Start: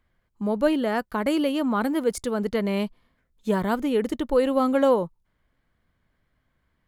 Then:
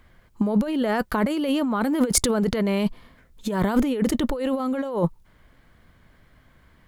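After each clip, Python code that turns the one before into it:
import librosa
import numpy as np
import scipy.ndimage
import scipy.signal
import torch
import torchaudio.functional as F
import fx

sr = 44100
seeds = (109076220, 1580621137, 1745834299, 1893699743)

y = fx.over_compress(x, sr, threshold_db=-31.0, ratio=-1.0)
y = F.gain(torch.from_numpy(y), 8.0).numpy()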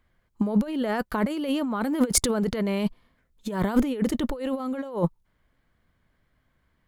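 y = fx.upward_expand(x, sr, threshold_db=-42.0, expansion=1.5)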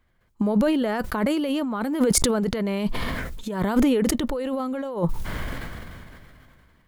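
y = fx.sustainer(x, sr, db_per_s=23.0)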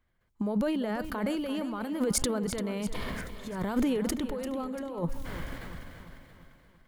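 y = fx.echo_feedback(x, sr, ms=343, feedback_pct=51, wet_db=-12.0)
y = F.gain(torch.from_numpy(y), -8.0).numpy()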